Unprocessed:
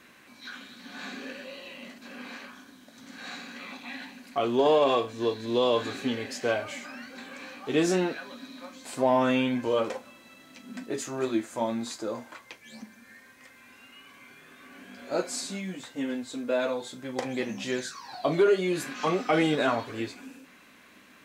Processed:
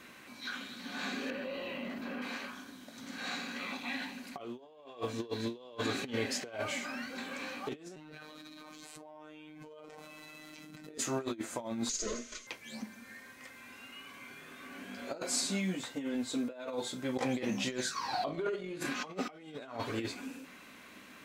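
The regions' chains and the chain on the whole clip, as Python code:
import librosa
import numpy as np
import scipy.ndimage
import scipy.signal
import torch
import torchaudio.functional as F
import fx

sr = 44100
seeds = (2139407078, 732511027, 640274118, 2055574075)

y = fx.chain(x, sr, fx.peak_eq(hz=8000.0, db=-15.0, octaves=2.3),
    fx.env_flatten(amount_pct=70), at=(1.3, 2.22))
y = fx.chain(y, sr, fx.robotise(hz=153.0),
    fx.hum_notches(base_hz=50, count=4),
    fx.env_flatten(amount_pct=100), at=(7.96, 10.98))
y = fx.chain(y, sr, fx.lower_of_two(delay_ms=4.7),
    fx.lowpass_res(hz=6500.0, q=7.1),
    fx.fixed_phaser(hz=350.0, stages=4), at=(11.89, 12.47))
y = fx.chain(y, sr, fx.high_shelf(hz=6200.0, db=-7.0),
    fx.room_flutter(wall_m=9.2, rt60_s=0.4),
    fx.over_compress(threshold_db=-30.0, ratio=-1.0), at=(17.96, 18.86))
y = fx.notch(y, sr, hz=1700.0, q=23.0)
y = fx.over_compress(y, sr, threshold_db=-33.0, ratio=-0.5)
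y = F.gain(torch.from_numpy(y), -4.5).numpy()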